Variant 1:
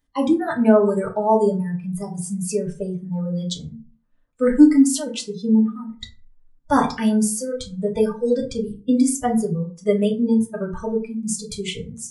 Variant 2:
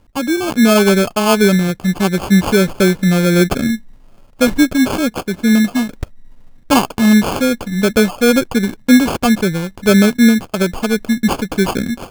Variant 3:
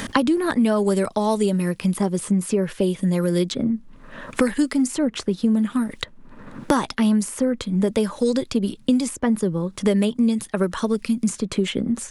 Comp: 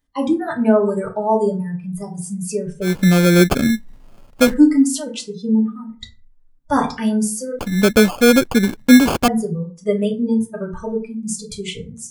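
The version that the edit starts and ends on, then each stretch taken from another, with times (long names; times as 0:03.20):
1
0:02.89–0:04.51: punch in from 2, crossfade 0.16 s
0:07.59–0:09.28: punch in from 2
not used: 3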